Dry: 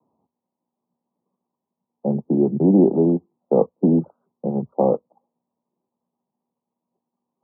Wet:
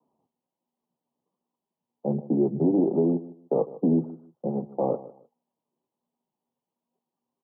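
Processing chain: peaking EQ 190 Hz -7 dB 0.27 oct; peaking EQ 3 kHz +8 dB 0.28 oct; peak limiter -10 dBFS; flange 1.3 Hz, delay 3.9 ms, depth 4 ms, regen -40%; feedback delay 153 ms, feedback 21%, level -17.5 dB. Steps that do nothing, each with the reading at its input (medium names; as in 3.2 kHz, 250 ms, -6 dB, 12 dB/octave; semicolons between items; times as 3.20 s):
peaking EQ 3 kHz: input has nothing above 960 Hz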